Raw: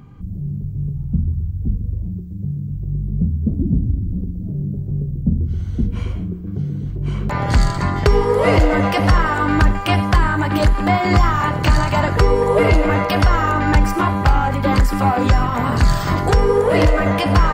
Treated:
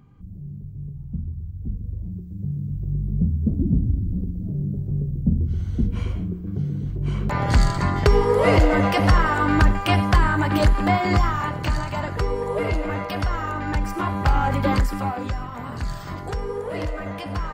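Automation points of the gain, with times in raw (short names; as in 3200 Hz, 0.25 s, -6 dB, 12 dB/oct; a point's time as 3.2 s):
1.4 s -10.5 dB
2.64 s -2.5 dB
10.79 s -2.5 dB
11.86 s -10 dB
13.8 s -10 dB
14.57 s -2 dB
15.35 s -14 dB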